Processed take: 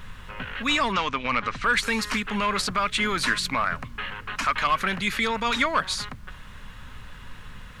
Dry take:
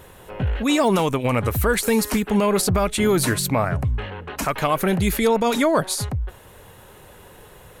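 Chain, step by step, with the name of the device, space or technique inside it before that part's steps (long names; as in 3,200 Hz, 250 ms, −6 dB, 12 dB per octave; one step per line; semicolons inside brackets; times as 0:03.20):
aircraft cabin announcement (band-pass filter 440–4,200 Hz; soft clipping −12 dBFS, distortion −21 dB; brown noise bed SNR 17 dB)
0:00.92–0:01.64: low-pass filter 6,400 Hz 24 dB per octave
flat-topped bell 520 Hz −13.5 dB
level +4.5 dB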